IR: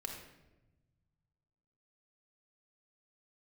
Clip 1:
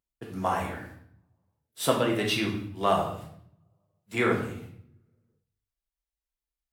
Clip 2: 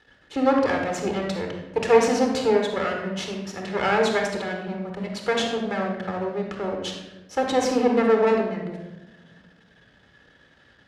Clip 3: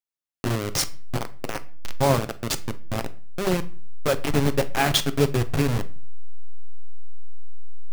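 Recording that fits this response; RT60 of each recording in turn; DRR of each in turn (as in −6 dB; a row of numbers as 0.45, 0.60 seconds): 2; 0.65, 1.0, 0.40 seconds; −1.0, 2.0, 10.0 decibels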